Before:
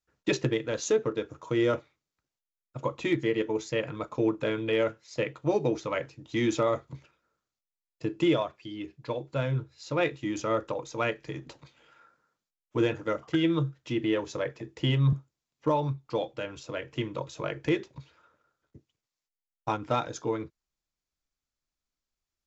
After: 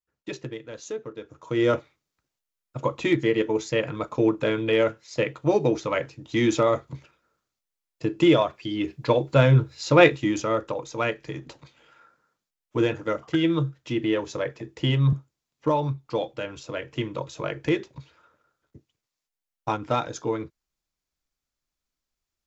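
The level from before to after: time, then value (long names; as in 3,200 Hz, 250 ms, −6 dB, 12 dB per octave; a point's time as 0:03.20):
0:01.14 −8 dB
0:01.70 +5 dB
0:08.11 +5 dB
0:08.95 +12 dB
0:10.06 +12 dB
0:10.51 +3 dB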